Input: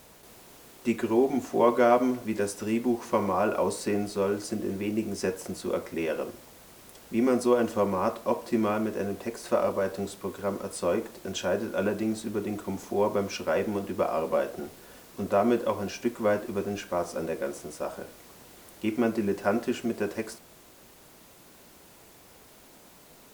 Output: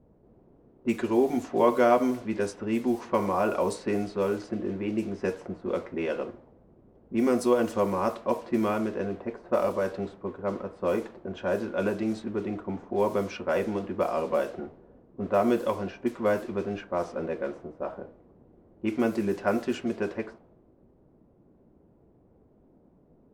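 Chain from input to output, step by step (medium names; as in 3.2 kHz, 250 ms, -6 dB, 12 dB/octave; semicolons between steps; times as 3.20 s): level-controlled noise filter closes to 340 Hz, open at -22 dBFS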